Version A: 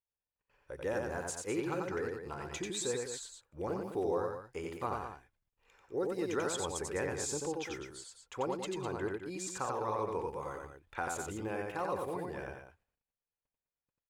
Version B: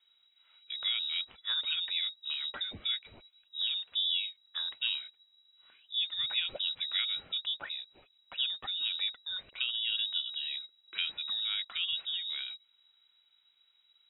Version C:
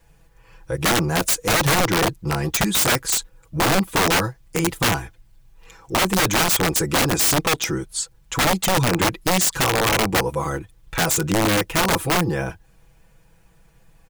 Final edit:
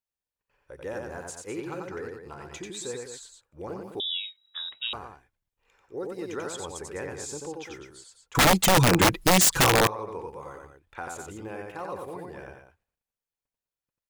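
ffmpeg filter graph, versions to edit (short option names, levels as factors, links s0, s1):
-filter_complex "[0:a]asplit=3[s0][s1][s2];[s0]atrim=end=4.002[s3];[1:a]atrim=start=3.998:end=4.932[s4];[s1]atrim=start=4.928:end=8.352[s5];[2:a]atrim=start=8.348:end=9.872[s6];[s2]atrim=start=9.868[s7];[s3][s4]acrossfade=d=0.004:c1=hsin:c2=hsin[s8];[s8][s5]acrossfade=d=0.004:c1=hsin:c2=hsin[s9];[s9][s6]acrossfade=d=0.004:c1=hsin:c2=hsin[s10];[s10][s7]acrossfade=d=0.004:c1=hsin:c2=hsin"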